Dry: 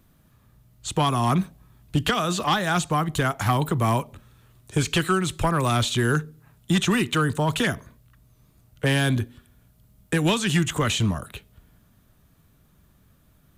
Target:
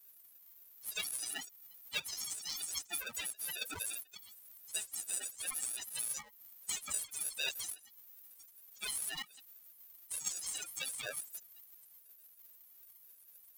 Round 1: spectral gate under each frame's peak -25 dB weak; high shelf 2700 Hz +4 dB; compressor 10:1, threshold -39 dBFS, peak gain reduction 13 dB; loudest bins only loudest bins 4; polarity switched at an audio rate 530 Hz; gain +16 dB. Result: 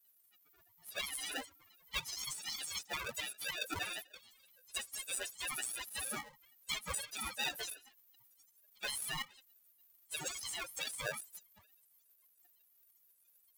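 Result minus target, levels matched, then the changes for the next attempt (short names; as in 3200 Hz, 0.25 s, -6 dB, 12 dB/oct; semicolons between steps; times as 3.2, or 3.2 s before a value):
2000 Hz band +4.5 dB
change: high shelf 2700 Hz +14 dB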